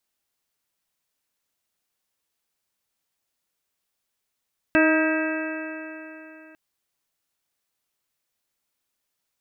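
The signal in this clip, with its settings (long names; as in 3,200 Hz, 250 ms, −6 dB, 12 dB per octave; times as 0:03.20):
stiff-string partials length 1.80 s, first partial 314 Hz, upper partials −3.5/−13.5/−12/−3.5/−10/−18/−7.5 dB, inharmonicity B 0.0014, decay 3.33 s, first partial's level −17 dB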